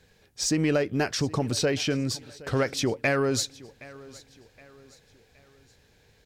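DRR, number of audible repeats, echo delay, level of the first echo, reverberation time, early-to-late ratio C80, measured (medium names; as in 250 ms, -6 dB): no reverb, 2, 769 ms, -20.5 dB, no reverb, no reverb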